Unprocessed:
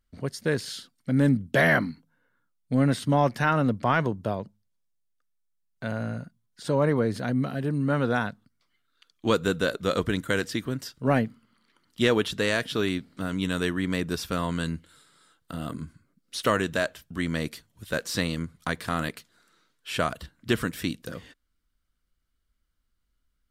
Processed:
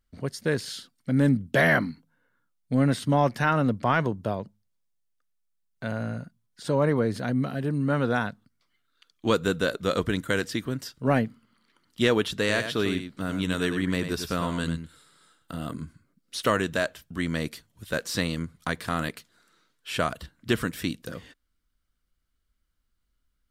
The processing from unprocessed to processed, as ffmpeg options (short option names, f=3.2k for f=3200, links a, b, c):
-filter_complex "[0:a]asettb=1/sr,asplit=3[a][b][c];[a]atrim=end=12.394[d];[b]atrim=start=12.39:end=15.56,asetpts=PTS-STARTPTS,afade=t=in:d=0.004:c=qsin,afade=t=out:st=3.166:d=0.004:c=qsin,aecho=1:1:97:0.376,atrim=end_sample=139797[e];[c]atrim=start=15.556[f];[d][e]acrossfade=d=0.004:c1=hsin:c2=qsin[g];[g][f]acrossfade=d=0.004:c1=qsin:c2=hsin"